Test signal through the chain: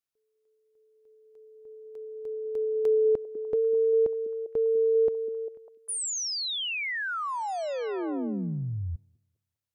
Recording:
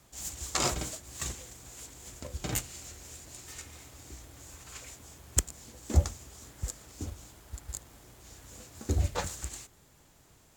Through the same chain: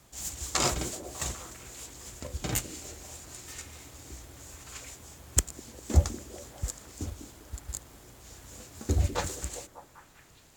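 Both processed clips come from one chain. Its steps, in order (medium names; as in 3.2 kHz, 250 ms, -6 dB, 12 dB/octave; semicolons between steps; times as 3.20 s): repeats whose band climbs or falls 199 ms, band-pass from 300 Hz, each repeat 0.7 oct, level -7 dB; trim +2 dB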